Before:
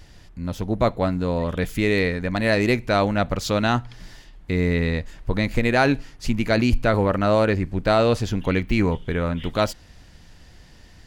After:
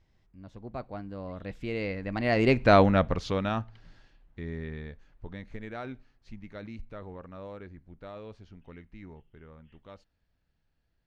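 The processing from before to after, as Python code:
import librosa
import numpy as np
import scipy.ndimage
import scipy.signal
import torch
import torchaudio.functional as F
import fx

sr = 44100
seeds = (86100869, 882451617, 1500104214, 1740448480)

y = fx.doppler_pass(x, sr, speed_mps=28, closest_m=6.1, pass_at_s=2.74)
y = scipy.signal.sosfilt(scipy.signal.butter(2, 6700.0, 'lowpass', fs=sr, output='sos'), y)
y = fx.high_shelf(y, sr, hz=4500.0, db=-10.5)
y = F.gain(torch.from_numpy(y), 2.0).numpy()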